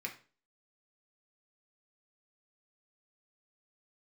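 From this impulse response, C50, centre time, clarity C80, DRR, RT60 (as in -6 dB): 11.0 dB, 13 ms, 17.0 dB, 0.5 dB, 0.40 s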